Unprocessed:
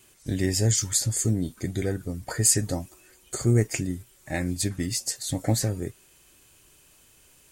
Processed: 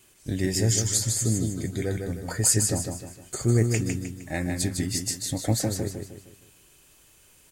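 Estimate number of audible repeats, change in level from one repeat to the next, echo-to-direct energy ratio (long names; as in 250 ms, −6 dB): 4, −8.0 dB, −4.0 dB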